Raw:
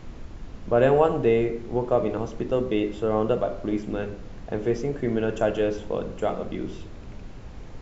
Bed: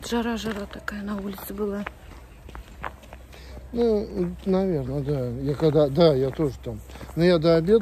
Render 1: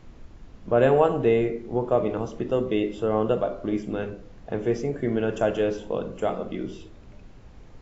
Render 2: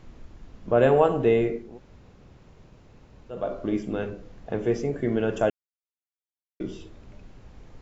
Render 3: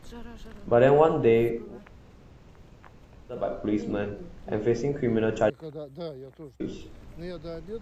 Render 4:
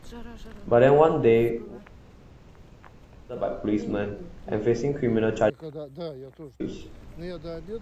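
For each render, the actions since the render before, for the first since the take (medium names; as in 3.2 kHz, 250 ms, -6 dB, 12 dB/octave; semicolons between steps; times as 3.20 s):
noise print and reduce 7 dB
1.67–3.40 s: room tone, crossfade 0.24 s; 5.50–6.60 s: mute
add bed -19.5 dB
trim +1.5 dB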